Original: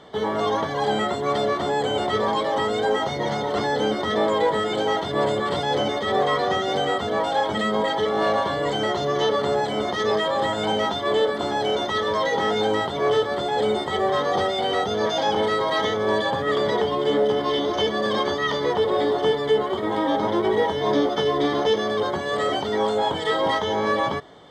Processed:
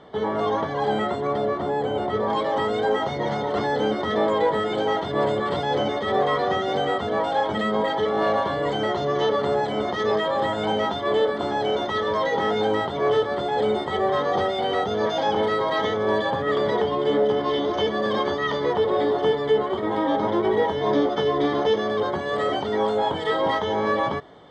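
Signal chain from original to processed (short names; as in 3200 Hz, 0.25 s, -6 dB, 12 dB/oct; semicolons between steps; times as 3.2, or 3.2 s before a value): LPF 2000 Hz 6 dB/oct, from 1.27 s 1000 Hz, from 2.3 s 2700 Hz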